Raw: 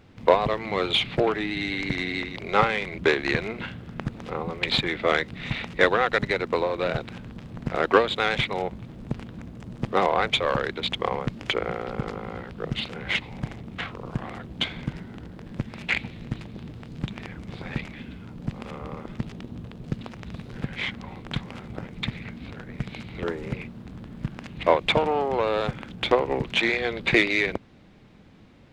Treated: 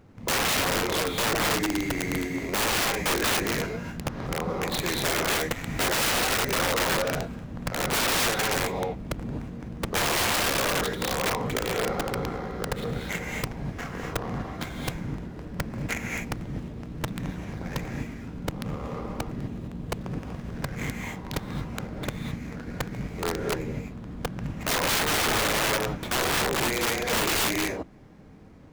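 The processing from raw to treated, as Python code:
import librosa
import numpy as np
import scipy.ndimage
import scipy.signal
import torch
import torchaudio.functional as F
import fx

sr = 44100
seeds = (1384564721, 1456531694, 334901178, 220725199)

y = scipy.signal.medfilt(x, 15)
y = fx.rev_gated(y, sr, seeds[0], gate_ms=280, shape='rising', drr_db=0.0)
y = (np.mod(10.0 ** (19.5 / 20.0) * y + 1.0, 2.0) - 1.0) / 10.0 ** (19.5 / 20.0)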